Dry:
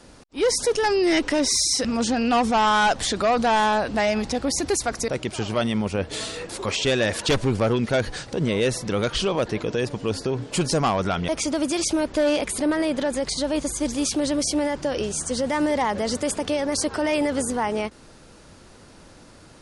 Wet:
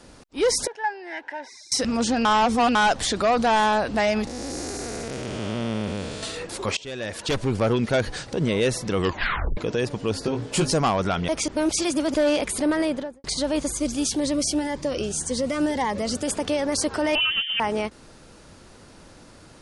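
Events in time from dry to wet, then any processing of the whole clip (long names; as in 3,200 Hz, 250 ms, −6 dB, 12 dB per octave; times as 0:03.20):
0:00.67–0:01.72: pair of resonant band-passes 1,200 Hz, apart 0.87 octaves
0:02.25–0:02.75: reverse
0:04.27–0:06.23: spectrum smeared in time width 458 ms
0:06.77–0:07.70: fade in, from −20.5 dB
0:08.93: tape stop 0.64 s
0:10.21–0:10.72: double-tracking delay 19 ms −4 dB
0:11.48–0:12.14: reverse
0:12.82–0:13.24: fade out and dull
0:13.78–0:16.28: phaser whose notches keep moving one way rising 1.8 Hz
0:17.15–0:17.60: voice inversion scrambler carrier 3,300 Hz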